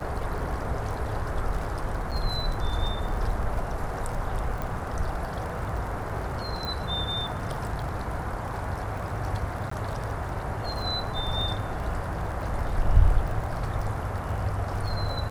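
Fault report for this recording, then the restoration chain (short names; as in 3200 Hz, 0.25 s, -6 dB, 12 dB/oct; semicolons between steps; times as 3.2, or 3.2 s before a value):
crackle 33/s -34 dBFS
2.11–2.12 gap 6.9 ms
4.62 pop
6.65 pop
9.7–9.71 gap 14 ms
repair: de-click; interpolate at 2.11, 6.9 ms; interpolate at 9.7, 14 ms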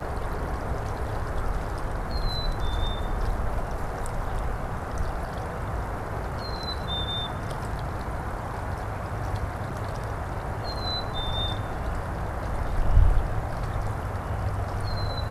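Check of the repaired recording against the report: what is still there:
none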